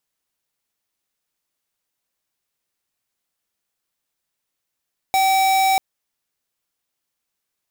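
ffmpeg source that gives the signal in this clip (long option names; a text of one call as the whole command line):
ffmpeg -f lavfi -i "aevalsrc='0.15*(2*lt(mod(768*t,1),0.5)-1)':duration=0.64:sample_rate=44100" out.wav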